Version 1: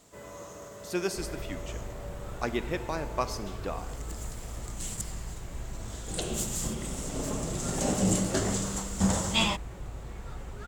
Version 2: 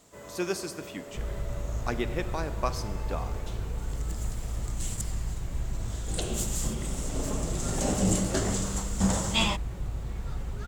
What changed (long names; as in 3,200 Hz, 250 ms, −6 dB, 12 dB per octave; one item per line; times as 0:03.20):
speech: entry −0.55 s
second sound: add bass and treble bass +7 dB, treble +7 dB